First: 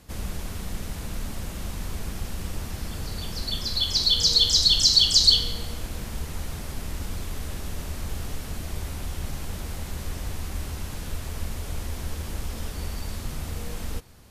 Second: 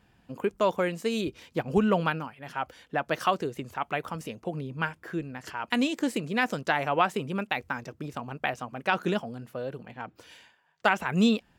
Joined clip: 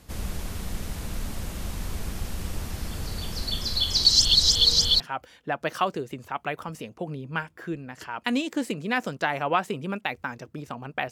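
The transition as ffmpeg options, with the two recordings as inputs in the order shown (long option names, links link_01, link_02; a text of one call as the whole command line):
ffmpeg -i cue0.wav -i cue1.wav -filter_complex "[0:a]apad=whole_dur=11.11,atrim=end=11.11,asplit=2[link_01][link_02];[link_01]atrim=end=4.052[link_03];[link_02]atrim=start=4.048:end=5.002,asetpts=PTS-STARTPTS,areverse[link_04];[1:a]atrim=start=2.458:end=8.57[link_05];[link_03][link_04]acrossfade=duration=0.004:curve1=hsin:curve2=hsin[link_06];[link_06][link_05]acrossfade=duration=0.004:curve1=hsin:curve2=hsin" out.wav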